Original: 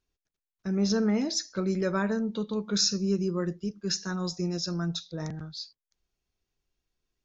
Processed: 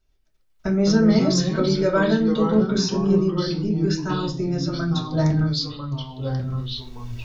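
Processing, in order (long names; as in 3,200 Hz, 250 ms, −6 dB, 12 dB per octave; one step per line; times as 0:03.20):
camcorder AGC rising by 16 dB per second
0:02.42–0:05.05: high-shelf EQ 4,100 Hz −11 dB
convolution reverb RT60 0.30 s, pre-delay 3 ms, DRR −2.5 dB
delay with pitch and tempo change per echo 90 ms, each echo −3 semitones, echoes 2, each echo −6 dB
level +1.5 dB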